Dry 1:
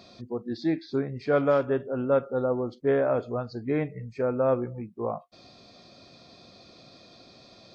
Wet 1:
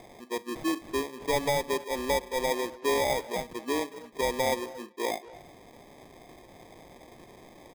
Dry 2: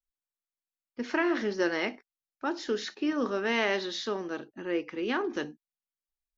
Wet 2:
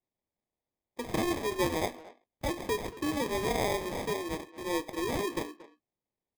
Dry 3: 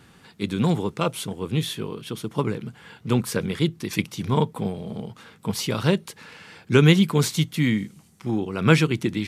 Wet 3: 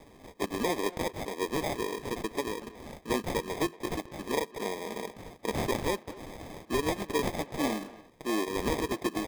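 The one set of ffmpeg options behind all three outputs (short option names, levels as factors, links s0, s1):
-filter_complex "[0:a]highpass=f=300:w=0.5412,highpass=f=300:w=1.3066,asplit=2[s0][s1];[s1]acompressor=threshold=0.02:ratio=6,volume=0.944[s2];[s0][s2]amix=inputs=2:normalize=0,alimiter=limit=0.188:level=0:latency=1:release=357,acrusher=samples=31:mix=1:aa=0.000001,asplit=2[s3][s4];[s4]adelay=230,highpass=300,lowpass=3400,asoftclip=type=hard:threshold=0.0668,volume=0.178[s5];[s3][s5]amix=inputs=2:normalize=0,volume=0.668"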